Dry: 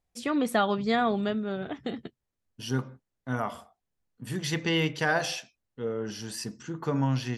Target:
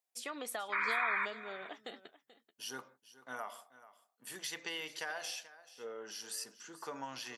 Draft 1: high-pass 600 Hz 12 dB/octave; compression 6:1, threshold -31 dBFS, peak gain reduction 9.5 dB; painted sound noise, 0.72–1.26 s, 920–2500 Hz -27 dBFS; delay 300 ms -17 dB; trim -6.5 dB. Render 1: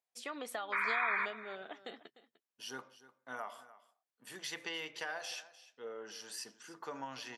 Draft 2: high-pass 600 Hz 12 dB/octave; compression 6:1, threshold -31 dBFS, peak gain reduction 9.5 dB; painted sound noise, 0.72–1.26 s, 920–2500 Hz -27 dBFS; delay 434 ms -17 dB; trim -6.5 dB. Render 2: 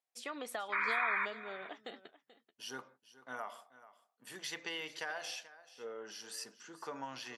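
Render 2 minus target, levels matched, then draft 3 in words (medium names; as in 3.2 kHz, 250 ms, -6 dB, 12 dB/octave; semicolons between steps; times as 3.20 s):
8 kHz band -4.0 dB
high-pass 600 Hz 12 dB/octave; treble shelf 7.4 kHz +11 dB; compression 6:1, threshold -31 dBFS, peak gain reduction 10 dB; painted sound noise, 0.72–1.26 s, 920–2500 Hz -27 dBFS; delay 434 ms -17 dB; trim -6.5 dB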